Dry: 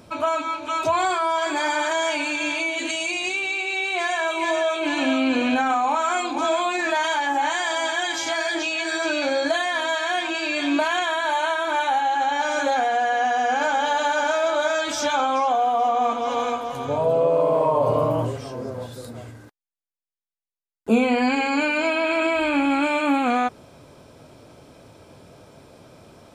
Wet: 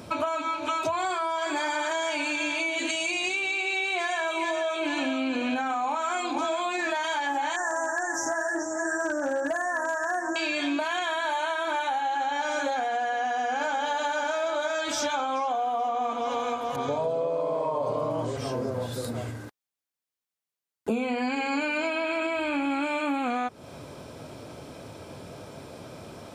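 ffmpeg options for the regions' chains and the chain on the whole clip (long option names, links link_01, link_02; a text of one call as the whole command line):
ffmpeg -i in.wav -filter_complex "[0:a]asettb=1/sr,asplit=3[link_01][link_02][link_03];[link_01]atrim=end=7.564[link_04];[link_02]atrim=start=7.56:end=10.36,asetpts=PTS-STARTPTS,afade=type=in:duration=0.004:curve=qsin,afade=type=out:start_time=2.796:duration=0.004:curve=qsin,asuperstop=centerf=3200:order=20:qfactor=0.92,asoftclip=type=hard:threshold=-17dB[link_05];[link_03]atrim=start=10.356[link_06];[link_04][link_05]acrossfade=duration=0.004:curve1=hsin:curve2=qsin[link_07];[link_07][link_06]acrossfade=duration=0.004:curve1=qsin:curve2=hsin,asettb=1/sr,asplit=3[link_08][link_09][link_10];[link_08]atrim=end=16.764[link_11];[link_09]atrim=start=16.76:end=18.37,asetpts=PTS-STARTPTS,afade=type=in:duration=0.004:curve=qsin,afade=type=out:start_time=1.606:duration=0.004:curve=qsin,highpass=140,lowpass=6900,bandreject=frequency=2800:width=8.6,adynamicequalizer=threshold=0.00891:dfrequency=3200:dqfactor=0.7:tfrequency=3200:tqfactor=0.7:attack=5:release=100:ratio=0.375:range=3.5:mode=boostabove:tftype=highshelf[link_12];[link_10]atrim=start=18.366[link_13];[link_11][link_12]acrossfade=duration=0.004:curve1=hsin:curve2=qsin[link_14];[link_14][link_13]acrossfade=duration=0.004:curve1=qsin:curve2=hsin,highpass=58,acompressor=threshold=-31dB:ratio=6,volume=5dB" out.wav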